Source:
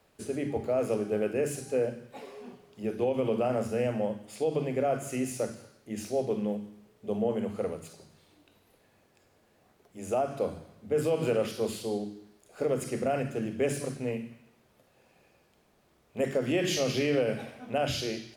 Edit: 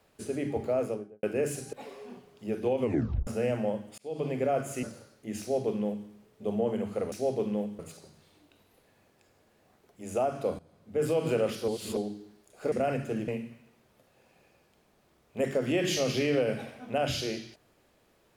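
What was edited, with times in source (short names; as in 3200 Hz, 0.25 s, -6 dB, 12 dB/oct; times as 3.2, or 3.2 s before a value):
0.7–1.23 studio fade out
1.73–2.09 cut
3.18 tape stop 0.45 s
4.34–4.66 fade in
5.19–5.46 cut
6.03–6.7 copy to 7.75
10.55–11.01 fade in, from -17.5 dB
11.64–11.93 reverse
12.68–12.98 cut
13.54–14.08 cut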